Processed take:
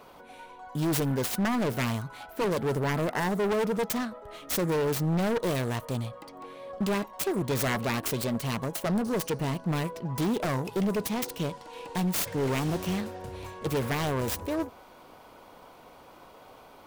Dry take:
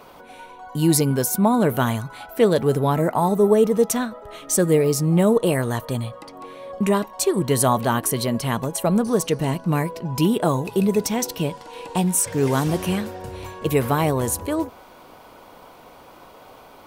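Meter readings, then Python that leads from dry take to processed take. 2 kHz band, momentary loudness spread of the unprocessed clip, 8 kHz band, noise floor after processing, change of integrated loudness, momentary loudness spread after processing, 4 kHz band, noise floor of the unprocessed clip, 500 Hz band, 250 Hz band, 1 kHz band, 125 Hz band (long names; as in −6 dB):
−3.0 dB, 12 LU, −12.0 dB, −52 dBFS, −8.5 dB, 11 LU, −5.0 dB, −46 dBFS, −9.5 dB, −8.5 dB, −8.5 dB, −7.5 dB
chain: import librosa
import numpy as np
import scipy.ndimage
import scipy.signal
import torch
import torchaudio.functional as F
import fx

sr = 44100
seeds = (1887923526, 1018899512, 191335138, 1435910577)

y = fx.self_delay(x, sr, depth_ms=0.66)
y = np.clip(10.0 ** (17.5 / 20.0) * y, -1.0, 1.0) / 10.0 ** (17.5 / 20.0)
y = y * librosa.db_to_amplitude(-5.5)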